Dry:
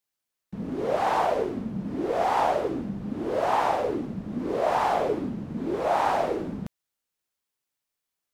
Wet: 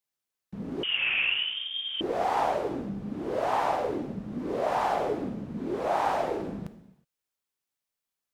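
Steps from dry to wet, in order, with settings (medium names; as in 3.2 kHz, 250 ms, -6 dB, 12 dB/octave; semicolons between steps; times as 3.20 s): gated-style reverb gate 390 ms falling, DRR 9.5 dB; 0.83–2.01 s: frequency inversion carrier 3.4 kHz; trim -3.5 dB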